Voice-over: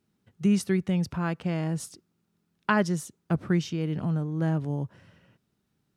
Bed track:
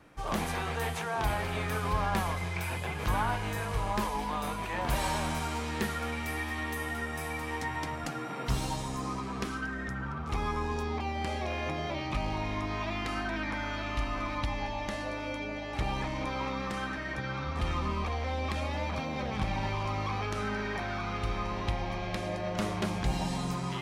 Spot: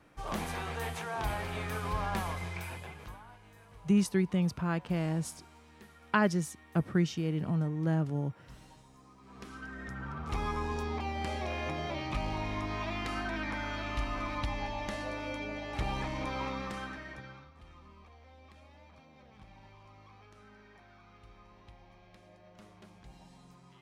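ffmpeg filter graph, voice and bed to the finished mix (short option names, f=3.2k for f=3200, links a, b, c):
-filter_complex "[0:a]adelay=3450,volume=-3dB[a];[1:a]volume=17dB,afade=t=out:st=2.45:d=0.74:silence=0.112202,afade=t=in:st=9.19:d=1.14:silence=0.0891251,afade=t=out:st=16.44:d=1.07:silence=0.0841395[b];[a][b]amix=inputs=2:normalize=0"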